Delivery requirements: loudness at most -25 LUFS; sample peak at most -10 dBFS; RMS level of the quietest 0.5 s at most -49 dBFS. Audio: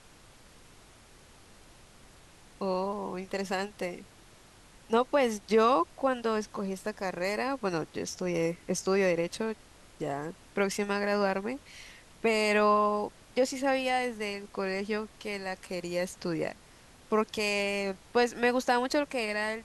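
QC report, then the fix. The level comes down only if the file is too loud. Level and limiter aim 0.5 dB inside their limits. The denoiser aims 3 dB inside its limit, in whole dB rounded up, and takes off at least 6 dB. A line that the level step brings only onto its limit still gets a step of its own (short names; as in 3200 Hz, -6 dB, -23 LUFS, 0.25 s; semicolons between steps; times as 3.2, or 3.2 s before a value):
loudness -30.0 LUFS: OK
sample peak -13.5 dBFS: OK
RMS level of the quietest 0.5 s -56 dBFS: OK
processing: none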